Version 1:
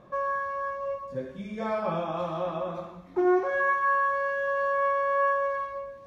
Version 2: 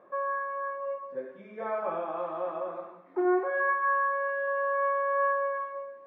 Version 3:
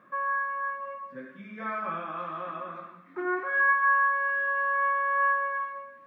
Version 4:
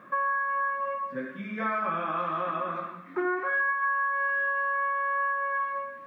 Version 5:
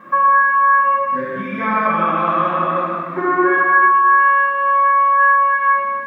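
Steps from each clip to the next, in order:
Chebyshev band-pass filter 370–1,800 Hz, order 2; level −1.5 dB
flat-topped bell 570 Hz −15.5 dB; level +7 dB
downward compressor 6 to 1, threshold −33 dBFS, peak gain reduction 13.5 dB; level +7.5 dB
convolution reverb RT60 1.6 s, pre-delay 4 ms, DRR −6.5 dB; level +3 dB

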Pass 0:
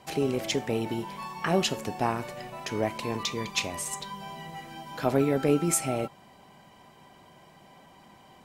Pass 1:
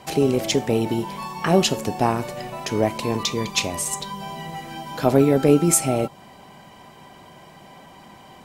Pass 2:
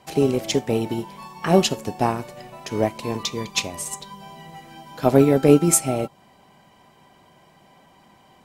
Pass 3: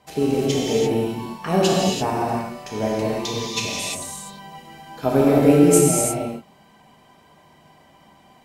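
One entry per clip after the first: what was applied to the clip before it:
dynamic equaliser 1,800 Hz, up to −5 dB, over −45 dBFS, Q 0.77; level +8.5 dB
expander for the loud parts 1.5 to 1, over −33 dBFS; level +2.5 dB
reverb whose tail is shaped and stops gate 370 ms flat, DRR −5 dB; level −5 dB

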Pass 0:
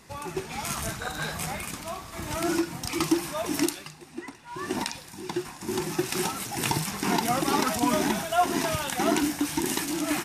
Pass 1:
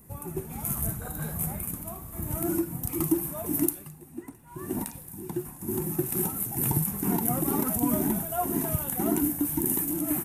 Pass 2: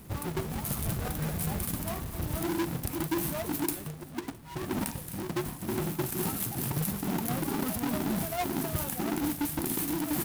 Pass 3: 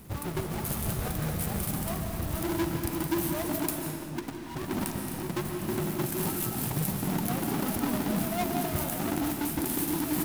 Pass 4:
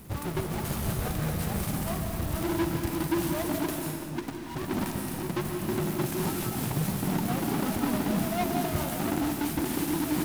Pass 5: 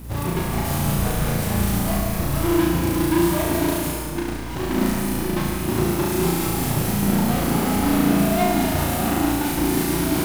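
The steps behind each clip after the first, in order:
drawn EQ curve 140 Hz 0 dB, 5,100 Hz −25 dB, 12,000 Hz +7 dB; level +4.5 dB
each half-wave held at its own peak; reversed playback; downward compressor, threshold −29 dBFS, peak gain reduction 13 dB; reversed playback
comb and all-pass reverb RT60 2.1 s, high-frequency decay 0.8×, pre-delay 105 ms, DRR 3 dB
slew-rate limiting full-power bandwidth 130 Hz; level +1.5 dB
mains hum 60 Hz, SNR 13 dB; on a send: flutter between parallel walls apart 6 metres, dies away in 1 s; on the sum: level +4.5 dB

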